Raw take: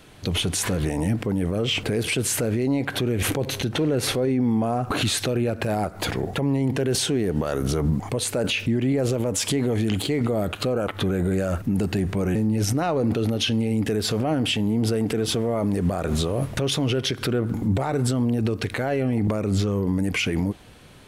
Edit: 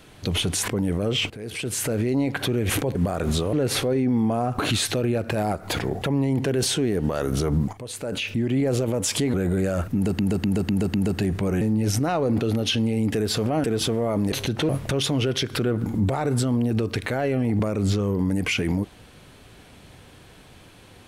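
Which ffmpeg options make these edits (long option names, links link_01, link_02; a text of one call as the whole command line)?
ffmpeg -i in.wav -filter_complex "[0:a]asplit=14[link_01][link_02][link_03][link_04][link_05][link_06][link_07][link_08][link_09][link_10][link_11][link_12][link_13][link_14];[link_01]atrim=end=0.682[link_15];[link_02]atrim=start=1.208:end=1.83,asetpts=PTS-STARTPTS,afade=type=out:start_time=0.618:duration=0.004:curve=hsin:silence=0.125893[link_16];[link_03]atrim=start=1.83:end=3.482,asetpts=PTS-STARTPTS,afade=type=in:duration=0.7:silence=0.125893[link_17];[link_04]atrim=start=15.788:end=16.372[link_18];[link_05]atrim=start=3.848:end=8.05,asetpts=PTS-STARTPTS,afade=type=out:start_time=4.198:duration=0.004:curve=hsin:silence=0.199526[link_19];[link_06]atrim=start=8.05:end=9.662,asetpts=PTS-STARTPTS,afade=type=in:duration=0.86:silence=0.199526[link_20];[link_07]atrim=start=11.078:end=11.932[link_21];[link_08]atrim=start=11.678:end=11.932[link_22];[link_09]atrim=start=11.678:end=11.932[link_23];[link_10]atrim=start=11.678:end=11.932[link_24];[link_11]atrim=start=11.678:end=14.382[link_25];[link_12]atrim=start=15.108:end=15.792[link_26];[link_13]atrim=start=3.478:end=3.852[link_27];[link_14]atrim=start=16.368[link_28];[link_16][link_17]concat=n=2:v=0:a=1[link_29];[link_15][link_29]acrossfade=duration=0.004:curve1=hsin:curve2=hsin[link_30];[link_30][link_18]acrossfade=duration=0.004:curve1=hsin:curve2=hsin[link_31];[link_19][link_20]concat=n=2:v=0:a=1[link_32];[link_31][link_32]acrossfade=duration=0.004:curve1=hsin:curve2=hsin[link_33];[link_33][link_21]acrossfade=duration=0.004:curve1=hsin:curve2=hsin[link_34];[link_34][link_22]acrossfade=duration=0.004:curve1=hsin:curve2=hsin[link_35];[link_35][link_23]acrossfade=duration=0.004:curve1=hsin:curve2=hsin[link_36];[link_36][link_24]acrossfade=duration=0.004:curve1=hsin:curve2=hsin[link_37];[link_37][link_25]acrossfade=duration=0.004:curve1=hsin:curve2=hsin[link_38];[link_38][link_26]acrossfade=duration=0.004:curve1=hsin:curve2=hsin[link_39];[link_39][link_27]acrossfade=duration=0.004:curve1=hsin:curve2=hsin[link_40];[link_40][link_28]acrossfade=duration=0.004:curve1=hsin:curve2=hsin" out.wav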